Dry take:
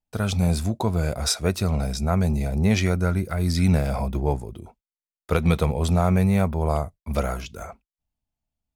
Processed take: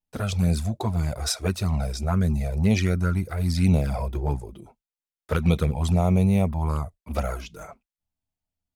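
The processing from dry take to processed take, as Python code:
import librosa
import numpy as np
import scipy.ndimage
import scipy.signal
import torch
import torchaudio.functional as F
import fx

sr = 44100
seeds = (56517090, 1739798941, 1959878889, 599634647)

y = fx.env_flanger(x, sr, rest_ms=11.1, full_db=-14.5)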